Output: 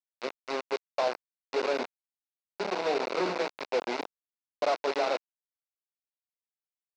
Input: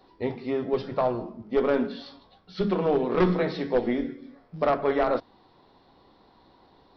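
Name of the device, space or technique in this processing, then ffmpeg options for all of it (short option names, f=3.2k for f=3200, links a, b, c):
hand-held game console: -af "acrusher=bits=3:mix=0:aa=0.000001,highpass=480,equalizer=f=1.2k:t=q:w=4:g=-6,equalizer=f=1.8k:t=q:w=4:g=-8,equalizer=f=3.2k:t=q:w=4:g=-10,lowpass=f=4.6k:w=0.5412,lowpass=f=4.6k:w=1.3066,volume=-2dB"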